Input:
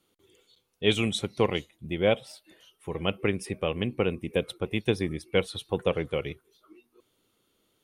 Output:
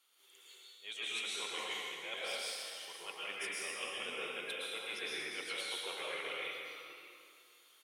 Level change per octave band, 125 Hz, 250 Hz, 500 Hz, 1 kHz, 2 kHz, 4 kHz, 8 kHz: -37.0, -25.5, -18.5, -9.0, -4.5, -4.5, -0.5 dB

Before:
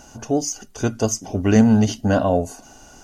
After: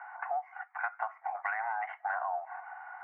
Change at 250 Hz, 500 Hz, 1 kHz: under -40 dB, -21.0 dB, -3.5 dB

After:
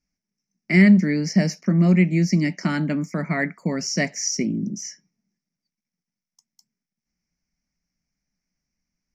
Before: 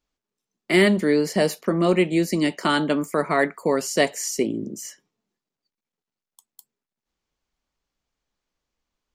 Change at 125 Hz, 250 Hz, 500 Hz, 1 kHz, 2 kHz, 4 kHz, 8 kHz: +9.0, +4.0, -8.0, -8.5, -0.5, -3.0, +1.5 dB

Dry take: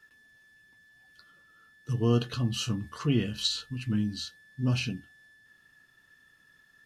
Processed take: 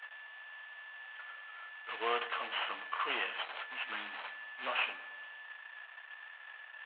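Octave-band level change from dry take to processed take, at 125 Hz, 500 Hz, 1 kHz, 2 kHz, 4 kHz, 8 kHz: under -40 dB, -7.5 dB, +7.5 dB, +6.5 dB, -6.0 dB, under -35 dB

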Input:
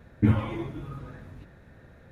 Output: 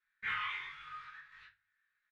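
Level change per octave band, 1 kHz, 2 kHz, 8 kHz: -2.5 dB, +6.0 dB, n/a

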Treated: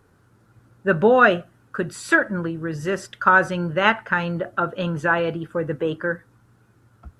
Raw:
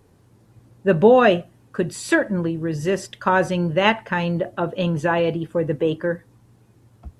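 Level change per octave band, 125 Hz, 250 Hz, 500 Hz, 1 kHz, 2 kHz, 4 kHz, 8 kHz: -3.5, -3.5, -3.0, +1.5, +5.0, -2.5, -3.5 dB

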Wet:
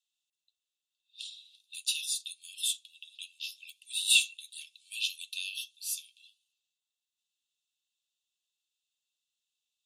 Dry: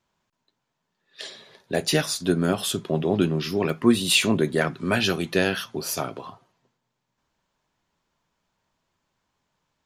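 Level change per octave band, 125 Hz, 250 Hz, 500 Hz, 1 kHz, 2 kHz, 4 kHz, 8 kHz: under -40 dB, under -40 dB, under -40 dB, under -40 dB, -9.0 dB, -4.0 dB, -2.5 dB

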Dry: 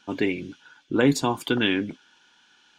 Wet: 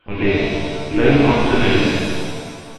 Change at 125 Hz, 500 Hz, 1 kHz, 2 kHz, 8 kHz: +12.5, +10.0, +9.0, +8.5, +2.0 dB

